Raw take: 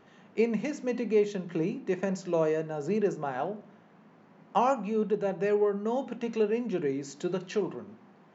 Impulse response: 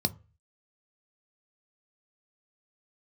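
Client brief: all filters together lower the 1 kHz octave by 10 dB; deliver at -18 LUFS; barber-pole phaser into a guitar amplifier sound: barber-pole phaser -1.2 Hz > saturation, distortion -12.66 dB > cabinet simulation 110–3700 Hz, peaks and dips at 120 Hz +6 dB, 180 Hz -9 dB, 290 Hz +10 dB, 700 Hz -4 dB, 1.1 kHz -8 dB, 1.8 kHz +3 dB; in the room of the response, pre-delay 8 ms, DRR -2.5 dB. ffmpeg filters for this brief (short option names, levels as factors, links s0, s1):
-filter_complex "[0:a]equalizer=f=1000:t=o:g=-9,asplit=2[s0][s1];[1:a]atrim=start_sample=2205,adelay=8[s2];[s1][s2]afir=irnorm=-1:irlink=0,volume=0.668[s3];[s0][s3]amix=inputs=2:normalize=0,asplit=2[s4][s5];[s5]afreqshift=-1.2[s6];[s4][s6]amix=inputs=2:normalize=1,asoftclip=threshold=0.106,highpass=110,equalizer=f=120:t=q:w=4:g=6,equalizer=f=180:t=q:w=4:g=-9,equalizer=f=290:t=q:w=4:g=10,equalizer=f=700:t=q:w=4:g=-4,equalizer=f=1100:t=q:w=4:g=-8,equalizer=f=1800:t=q:w=4:g=3,lowpass=f=3700:w=0.5412,lowpass=f=3700:w=1.3066,volume=2.82"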